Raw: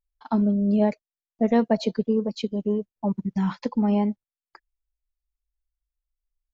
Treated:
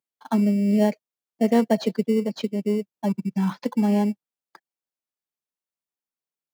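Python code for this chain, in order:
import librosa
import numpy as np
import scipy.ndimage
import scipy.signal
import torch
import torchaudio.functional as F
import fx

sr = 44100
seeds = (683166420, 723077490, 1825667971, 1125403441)

p1 = fx.sample_hold(x, sr, seeds[0], rate_hz=2500.0, jitter_pct=0)
p2 = x + (p1 * 10.0 ** (-9.5 / 20.0))
p3 = scipy.signal.sosfilt(scipy.signal.butter(4, 140.0, 'highpass', fs=sr, output='sos'), p2)
y = p3 * 10.0 ** (-1.0 / 20.0)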